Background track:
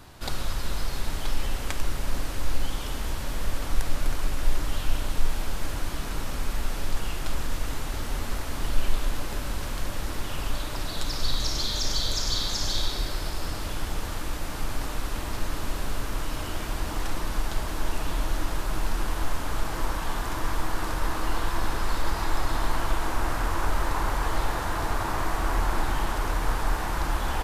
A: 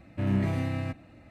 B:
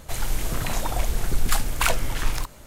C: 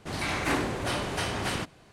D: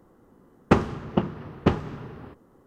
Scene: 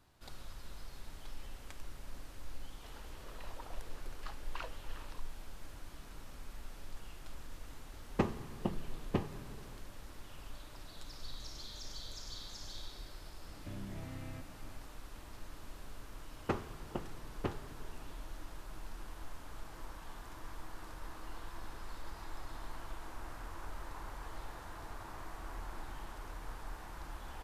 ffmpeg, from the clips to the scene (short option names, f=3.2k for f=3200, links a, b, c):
-filter_complex "[4:a]asplit=2[a][b];[0:a]volume=-19.5dB[c];[2:a]highpass=f=370:w=0.5412,highpass=f=370:w=1.3066,equalizer=f=710:t=q:w=4:g=-6,equalizer=f=1.5k:t=q:w=4:g=-4,equalizer=f=2.2k:t=q:w=4:g=-9,equalizer=f=3.5k:t=q:w=4:g=-7,lowpass=f=4k:w=0.5412,lowpass=f=4k:w=1.3066[d];[a]bandreject=f=1.4k:w=5.5[e];[1:a]acompressor=threshold=-38dB:ratio=6:attack=3.2:release=140:knee=1:detection=peak[f];[b]equalizer=f=190:t=o:w=0.58:g=-8.5[g];[d]atrim=end=2.66,asetpts=PTS-STARTPTS,volume=-17.5dB,afade=t=in:d=0.004:c=hsin,afade=t=out:st=2.656:d=0.004:c=hsin,adelay=2740[h];[e]atrim=end=2.66,asetpts=PTS-STARTPTS,volume=-13dB,afade=t=in:d=0.004:c=hsin,afade=t=out:st=2.656:d=0.004:c=hsin,adelay=7480[i];[f]atrim=end=1.3,asetpts=PTS-STARTPTS,volume=-5dB,afade=t=in:d=0.004:c=hsin,afade=t=out:st=1.296:d=0.004:c=hsin,adelay=13490[j];[g]atrim=end=2.66,asetpts=PTS-STARTPTS,volume=-15dB,afade=t=in:d=0.004:c=hsin,afade=t=out:st=2.656:d=0.004:c=hsin,adelay=15780[k];[c][h][i][j][k]amix=inputs=5:normalize=0"